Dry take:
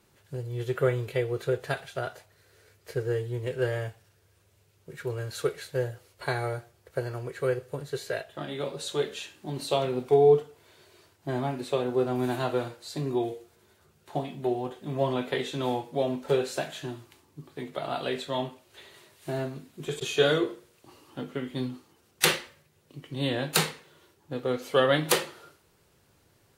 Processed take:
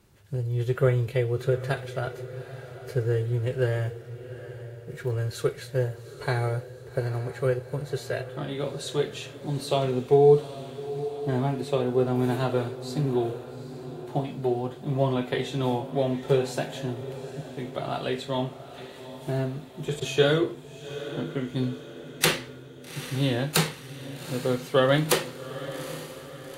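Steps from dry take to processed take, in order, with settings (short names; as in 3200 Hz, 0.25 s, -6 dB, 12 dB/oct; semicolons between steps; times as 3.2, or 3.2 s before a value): 3.86–5.13 block floating point 7-bit; low shelf 190 Hz +10 dB; diffused feedback echo 0.819 s, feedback 52%, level -13 dB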